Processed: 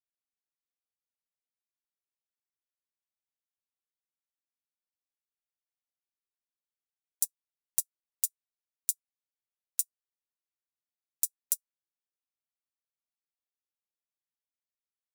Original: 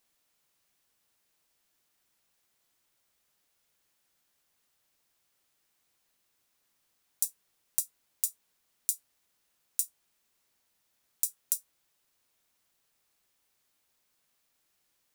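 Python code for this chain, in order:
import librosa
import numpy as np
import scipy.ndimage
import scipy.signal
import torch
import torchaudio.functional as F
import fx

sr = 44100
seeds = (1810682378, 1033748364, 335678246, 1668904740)

y = fx.upward_expand(x, sr, threshold_db=-45.0, expansion=2.5)
y = F.gain(torch.from_numpy(y), 1.0).numpy()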